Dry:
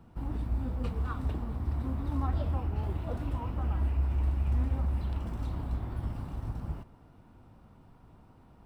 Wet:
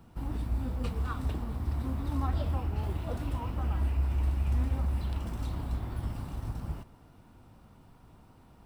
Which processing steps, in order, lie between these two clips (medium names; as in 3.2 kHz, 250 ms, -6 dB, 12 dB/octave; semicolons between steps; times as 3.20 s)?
treble shelf 3 kHz +9 dB